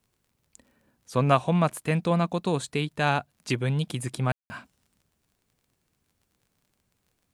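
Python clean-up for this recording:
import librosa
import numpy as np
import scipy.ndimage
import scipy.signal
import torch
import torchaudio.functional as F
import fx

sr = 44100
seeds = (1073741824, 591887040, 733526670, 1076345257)

y = fx.fix_declick_ar(x, sr, threshold=6.5)
y = fx.fix_ambience(y, sr, seeds[0], print_start_s=5.36, print_end_s=5.86, start_s=4.32, end_s=4.5)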